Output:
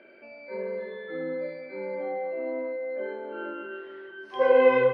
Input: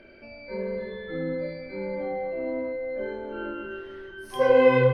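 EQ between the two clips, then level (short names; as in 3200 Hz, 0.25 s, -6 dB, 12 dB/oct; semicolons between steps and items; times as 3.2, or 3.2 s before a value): BPF 330–3300 Hz; air absorption 52 m; 0.0 dB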